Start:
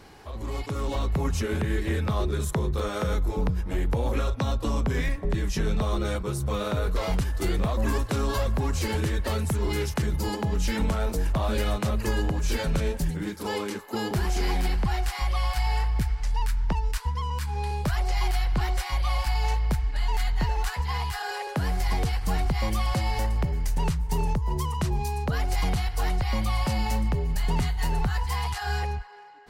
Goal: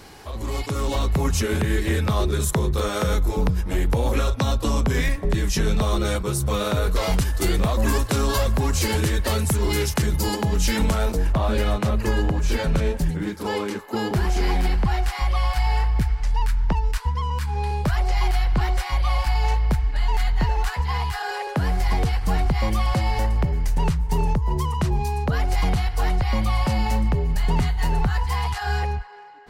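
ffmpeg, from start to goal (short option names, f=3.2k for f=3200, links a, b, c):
-af "asetnsamples=n=441:p=0,asendcmd='11.12 highshelf g -5.5',highshelf=f=3.9k:g=6.5,volume=4.5dB"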